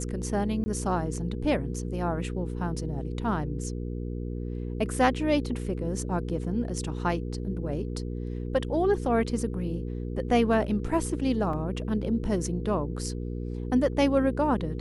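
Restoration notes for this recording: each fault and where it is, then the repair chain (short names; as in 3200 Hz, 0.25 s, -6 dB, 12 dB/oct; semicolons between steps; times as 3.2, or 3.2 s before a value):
hum 60 Hz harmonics 8 -33 dBFS
0.64–0.66 gap 20 ms
11.53 gap 3.4 ms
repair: de-hum 60 Hz, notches 8; interpolate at 0.64, 20 ms; interpolate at 11.53, 3.4 ms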